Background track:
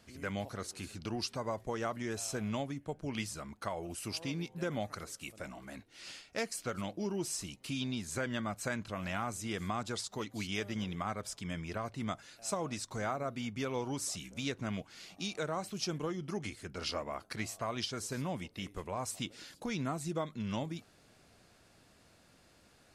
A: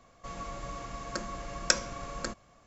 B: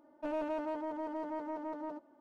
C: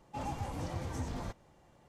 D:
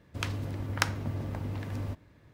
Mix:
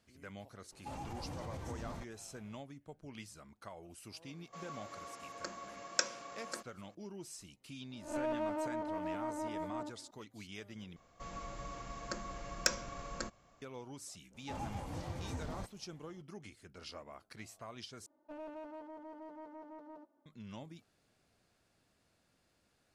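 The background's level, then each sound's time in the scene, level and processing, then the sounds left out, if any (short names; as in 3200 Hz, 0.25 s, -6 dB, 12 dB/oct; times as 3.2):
background track -11.5 dB
0.72 add C -2.5 dB + limiter -33.5 dBFS
4.29 add A -7 dB + HPF 310 Hz
7.91 add B -0.5 dB + spectral swells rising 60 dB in 0.41 s
10.96 replace with A -5.5 dB + overloaded stage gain 9.5 dB
14.34 add C -4 dB
18.06 replace with B -11 dB
not used: D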